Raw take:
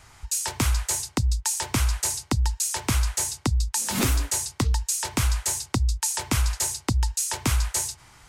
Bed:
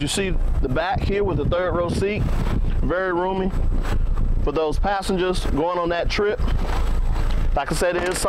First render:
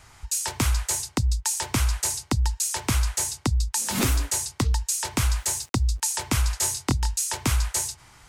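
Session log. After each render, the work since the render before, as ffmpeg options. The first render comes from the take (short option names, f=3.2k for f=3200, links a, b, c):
-filter_complex "[0:a]asettb=1/sr,asplit=3[a][b][c];[a]atrim=end=5.274[d];[b]atrim=start=5.27:end=6,asetpts=PTS-STARTPTS,afade=t=in:d=0.004:c=qsin,afade=t=out:st=0.726:d=0.004:c=qsin,aeval=exprs='val(0)*gte(abs(val(0)),0.00422)':c=same[e];[c]atrim=start=5.996[f];[d][e]acrossfade=d=0.004:c1=hsin:c2=qsin[g];[g][f]acrossfade=d=0.004:c1=qsin:c2=hsin,asettb=1/sr,asplit=3[h][i][j];[h]atrim=end=6.594[k];[i]atrim=start=6.59:end=7.17,asetpts=PTS-STARTPTS,afade=t=in:d=0.004:c=qsin,afade=t=out:st=0.576:d=0.004:c=qsin,asplit=2[l][m];[m]adelay=23,volume=-3.5dB[n];[l][n]amix=inputs=2:normalize=0,atrim=end_sample=25578[o];[j]atrim=start=7.166[p];[k][o]acrossfade=d=0.004:c1=hsin:c2=qsin[q];[q][p]acrossfade=d=0.004:c1=qsin:c2=hsin"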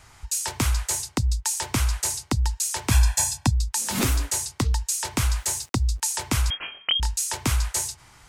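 -filter_complex "[0:a]asettb=1/sr,asplit=3[a][b][c];[a]atrim=end=2.914[d];[b]atrim=start=2.91:end=3.51,asetpts=PTS-STARTPTS,afade=t=in:d=0.004:c=qsin,afade=t=out:st=0.596:d=0.004:c=qsin,aecho=1:1:1.2:0.98,atrim=end_sample=26460[e];[c]atrim=start=3.506[f];[d][e]acrossfade=d=0.004:c1=hsin:c2=qsin[g];[g][f]acrossfade=d=0.004:c1=qsin:c2=hsin,asettb=1/sr,asplit=3[h][i][j];[h]atrim=end=6.504[k];[i]atrim=start=6.5:end=7,asetpts=PTS-STARTPTS,afade=t=in:d=0.004:c=qsin,afade=t=out:st=0.496:d=0.004:c=qsin,lowpass=f=2.8k:t=q:w=0.5098,lowpass=f=2.8k:t=q:w=0.6013,lowpass=f=2.8k:t=q:w=0.9,lowpass=f=2.8k:t=q:w=2.563,afreqshift=-3300[l];[j]atrim=start=6.996[m];[k][l]acrossfade=d=0.004:c1=hsin:c2=qsin[n];[n][m]acrossfade=d=0.004:c1=qsin:c2=hsin"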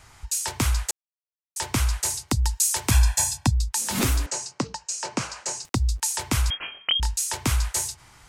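-filter_complex "[0:a]asettb=1/sr,asplit=3[a][b][c];[a]atrim=end=2.284[d];[b]atrim=start=2.28:end=2.91,asetpts=PTS-STARTPTS,afade=t=in:d=0.004:c=qsin,afade=t=out:st=0.626:d=0.004:c=qsin,highshelf=f=6.9k:g=8[e];[c]atrim=start=2.906[f];[d][e]acrossfade=d=0.004:c1=hsin:c2=qsin[g];[g][f]acrossfade=d=0.004:c1=qsin:c2=hsin,asettb=1/sr,asplit=3[h][i][j];[h]atrim=end=4.264[k];[i]atrim=start=4.26:end=5.65,asetpts=PTS-STARTPTS,afade=t=in:d=0.004:c=qsin,afade=t=out:st=1.386:d=0.004:c=qsin,highpass=f=150:w=0.5412,highpass=f=150:w=1.3066,equalizer=f=550:t=q:w=4:g=6,equalizer=f=2k:t=q:w=4:g=-4,equalizer=f=3.5k:t=q:w=4:g=-9,lowpass=f=7.2k:w=0.5412,lowpass=f=7.2k:w=1.3066[l];[j]atrim=start=5.646[m];[k][l]acrossfade=d=0.004:c1=hsin:c2=qsin[n];[n][m]acrossfade=d=0.004:c1=qsin:c2=hsin,asplit=3[o][p][q];[o]atrim=end=0.91,asetpts=PTS-STARTPTS,afade=t=out:st=0.906:d=0.004:c=hsin[r];[p]atrim=start=0.91:end=1.56,asetpts=PTS-STARTPTS,volume=0[s];[q]atrim=start=1.56,asetpts=PTS-STARTPTS,afade=t=in:d=0.004:c=hsin[t];[r][s][t]concat=n=3:v=0:a=1"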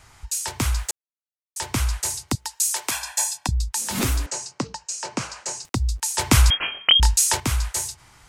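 -filter_complex "[0:a]asettb=1/sr,asplit=3[a][b][c];[a]atrim=end=0.594[d];[b]atrim=start=0.59:end=1.59,asetpts=PTS-STARTPTS,afade=t=in:d=0.004:c=qsin,afade=t=out:st=0.996:d=0.004:c=qsin,acrusher=bits=8:mix=0:aa=0.5[e];[c]atrim=start=1.586[f];[d][e]acrossfade=d=0.004:c1=hsin:c2=qsin[g];[g][f]acrossfade=d=0.004:c1=qsin:c2=hsin,asettb=1/sr,asplit=3[h][i][j];[h]atrim=end=2.354[k];[i]atrim=start=2.35:end=3.49,asetpts=PTS-STARTPTS,afade=t=in:d=0.004:c=qsin,afade=t=out:st=1.136:d=0.004:c=qsin,highpass=480[l];[j]atrim=start=3.486[m];[k][l]acrossfade=d=0.004:c1=hsin:c2=qsin[n];[n][m]acrossfade=d=0.004:c1=qsin:c2=hsin,asplit=3[o][p][q];[o]atrim=end=6.182[r];[p]atrim=start=6.178:end=7.402,asetpts=PTS-STARTPTS,volume=8dB[s];[q]atrim=start=7.398[t];[r][s]acrossfade=d=0.004:c1=hsin:c2=hsin[u];[u][t]acrossfade=d=0.004:c1=hsin:c2=hsin"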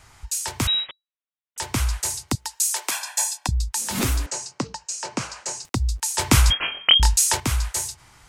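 -filter_complex "[0:a]asettb=1/sr,asplit=3[a][b][c];[a]atrim=end=0.674[d];[b]atrim=start=0.67:end=1.58,asetpts=PTS-STARTPTS,afade=t=in:d=0.004:c=qsin,afade=t=out:st=0.906:d=0.004:c=qsin,lowpass=f=3.3k:t=q:w=0.5098,lowpass=f=3.3k:t=q:w=0.6013,lowpass=f=3.3k:t=q:w=0.9,lowpass=f=3.3k:t=q:w=2.563,afreqshift=-3900[e];[c]atrim=start=1.576[f];[d][e]acrossfade=d=0.004:c1=hsin:c2=qsin[g];[g][f]acrossfade=d=0.004:c1=qsin:c2=hsin,asettb=1/sr,asplit=3[h][i][j];[h]atrim=end=2.634[k];[i]atrim=start=2.63:end=3.48,asetpts=PTS-STARTPTS,afade=t=in:d=0.004:c=qsin,afade=t=out:st=0.846:d=0.004:c=qsin,highpass=320[l];[j]atrim=start=3.476[m];[k][l]acrossfade=d=0.004:c1=hsin:c2=qsin[n];[n][m]acrossfade=d=0.004:c1=qsin:c2=hsin,asettb=1/sr,asplit=3[o][p][q];[o]atrim=end=6.124[r];[p]atrim=start=6.12:end=7.18,asetpts=PTS-STARTPTS,afade=t=in:d=0.004:c=qsin,afade=t=out:st=1.056:d=0.004:c=qsin,asplit=2[s][t];[t]adelay=23,volume=-13dB[u];[s][u]amix=inputs=2:normalize=0,atrim=end_sample=46746[v];[q]atrim=start=7.176[w];[r][v]acrossfade=d=0.004:c1=hsin:c2=qsin[x];[x][w]acrossfade=d=0.004:c1=qsin:c2=hsin"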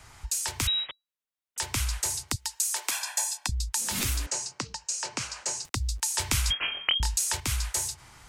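-filter_complex "[0:a]acrossover=split=92|1800[a][b][c];[a]acompressor=threshold=-30dB:ratio=4[d];[b]acompressor=threshold=-38dB:ratio=4[e];[c]acompressor=threshold=-26dB:ratio=4[f];[d][e][f]amix=inputs=3:normalize=0"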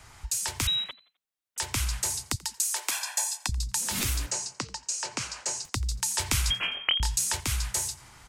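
-filter_complex "[0:a]asplit=4[a][b][c][d];[b]adelay=86,afreqshift=62,volume=-22dB[e];[c]adelay=172,afreqshift=124,volume=-30dB[f];[d]adelay=258,afreqshift=186,volume=-37.9dB[g];[a][e][f][g]amix=inputs=4:normalize=0"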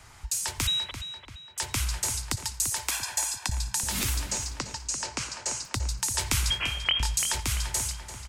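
-filter_complex "[0:a]asplit=2[a][b];[b]adelay=341,lowpass=f=3.8k:p=1,volume=-8.5dB,asplit=2[c][d];[d]adelay=341,lowpass=f=3.8k:p=1,volume=0.51,asplit=2[e][f];[f]adelay=341,lowpass=f=3.8k:p=1,volume=0.51,asplit=2[g][h];[h]adelay=341,lowpass=f=3.8k:p=1,volume=0.51,asplit=2[i][j];[j]adelay=341,lowpass=f=3.8k:p=1,volume=0.51,asplit=2[k][l];[l]adelay=341,lowpass=f=3.8k:p=1,volume=0.51[m];[a][c][e][g][i][k][m]amix=inputs=7:normalize=0"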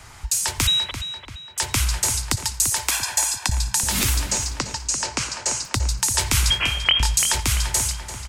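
-af "volume=7.5dB,alimiter=limit=-3dB:level=0:latency=1"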